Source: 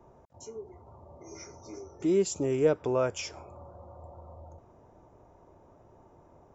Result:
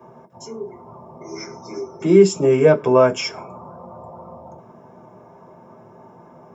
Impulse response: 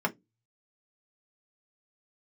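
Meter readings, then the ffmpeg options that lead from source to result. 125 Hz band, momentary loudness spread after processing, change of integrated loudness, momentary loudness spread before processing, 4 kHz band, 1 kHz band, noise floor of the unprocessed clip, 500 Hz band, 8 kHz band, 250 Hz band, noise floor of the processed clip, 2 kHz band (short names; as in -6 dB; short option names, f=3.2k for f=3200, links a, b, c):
+13.0 dB, 20 LU, +13.0 dB, 20 LU, +12.5 dB, +14.5 dB, -59 dBFS, +13.0 dB, n/a, +12.0 dB, -47 dBFS, +14.0 dB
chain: -filter_complex "[0:a]highshelf=f=3k:g=10[a];[1:a]atrim=start_sample=2205[b];[a][b]afir=irnorm=-1:irlink=0,volume=2dB"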